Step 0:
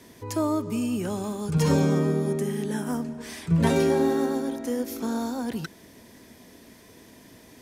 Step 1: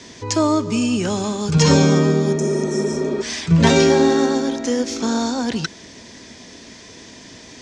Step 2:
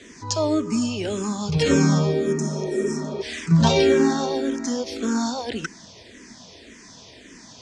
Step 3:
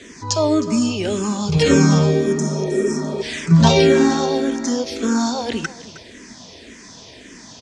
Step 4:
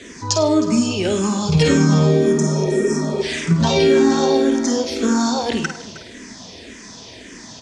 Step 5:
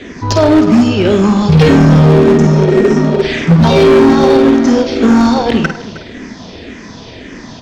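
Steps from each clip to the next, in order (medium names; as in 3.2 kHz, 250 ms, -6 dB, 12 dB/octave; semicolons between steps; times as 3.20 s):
steep low-pass 6.9 kHz 36 dB/octave; treble shelf 2.6 kHz +11 dB; spectral replace 2.40–3.19 s, 210–5100 Hz before; trim +7.5 dB
barber-pole phaser -1.8 Hz; trim -1.5 dB
delay 313 ms -16.5 dB; on a send at -21 dB: reverberation RT60 0.60 s, pre-delay 4 ms; on the sum: trim +4.5 dB
compression, threshold -14 dBFS, peak gain reduction 7 dB; on a send: flutter echo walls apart 8.8 m, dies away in 0.36 s; on the sum: trim +2 dB
in parallel at -9.5 dB: sample-rate reducer 1 kHz, jitter 20%; on the sum: distance through air 190 m; hard clipper -12 dBFS, distortion -13 dB; trim +9 dB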